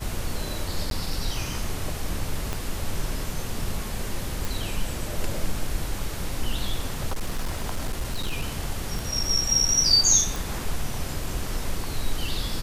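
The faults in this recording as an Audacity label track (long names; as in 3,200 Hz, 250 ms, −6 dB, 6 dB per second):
0.900000	0.910000	drop-out 12 ms
2.530000	2.530000	click −14 dBFS
4.450000	4.450000	click
7.070000	8.420000	clipping −22.5 dBFS
8.990000	8.990000	click
10.360000	10.360000	click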